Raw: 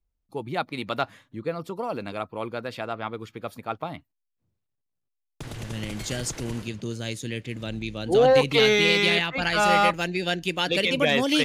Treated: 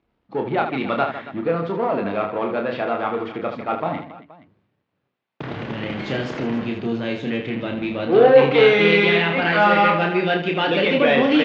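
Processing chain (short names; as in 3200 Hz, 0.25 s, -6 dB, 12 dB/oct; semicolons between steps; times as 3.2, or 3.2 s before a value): power-law curve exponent 0.7; BPF 180–3000 Hz; air absorption 200 m; on a send: reverse bouncing-ball echo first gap 30 ms, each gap 1.6×, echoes 5; on the sum: gain +2 dB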